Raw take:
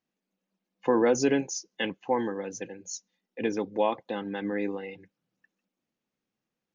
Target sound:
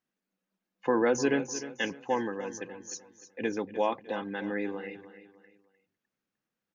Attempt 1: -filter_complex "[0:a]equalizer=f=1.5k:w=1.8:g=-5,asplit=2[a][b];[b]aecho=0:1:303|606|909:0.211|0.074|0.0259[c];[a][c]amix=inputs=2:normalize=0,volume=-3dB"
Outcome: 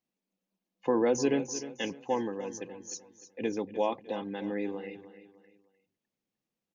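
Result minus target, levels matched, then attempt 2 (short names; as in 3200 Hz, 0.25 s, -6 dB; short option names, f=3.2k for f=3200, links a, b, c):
2000 Hz band -6.0 dB
-filter_complex "[0:a]equalizer=f=1.5k:w=1.8:g=5.5,asplit=2[a][b];[b]aecho=0:1:303|606|909:0.211|0.074|0.0259[c];[a][c]amix=inputs=2:normalize=0,volume=-3dB"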